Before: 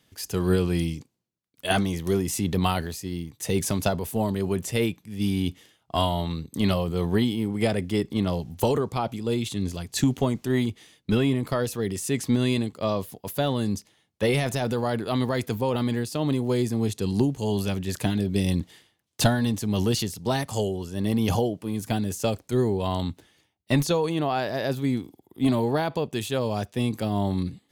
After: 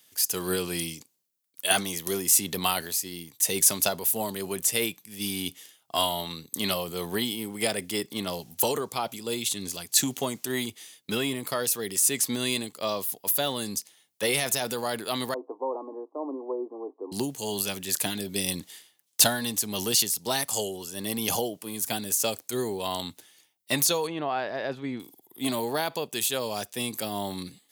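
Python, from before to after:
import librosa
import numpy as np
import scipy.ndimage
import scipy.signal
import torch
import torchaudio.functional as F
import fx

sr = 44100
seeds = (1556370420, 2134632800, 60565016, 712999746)

y = fx.cheby1_bandpass(x, sr, low_hz=270.0, high_hz=1100.0, order=5, at=(15.34, 17.12))
y = fx.lowpass(y, sr, hz=2100.0, slope=12, at=(24.07, 25.0))
y = scipy.signal.sosfilt(scipy.signal.butter(2, 88.0, 'highpass', fs=sr, output='sos'), y)
y = fx.riaa(y, sr, side='recording')
y = y * librosa.db_to_amplitude(-1.5)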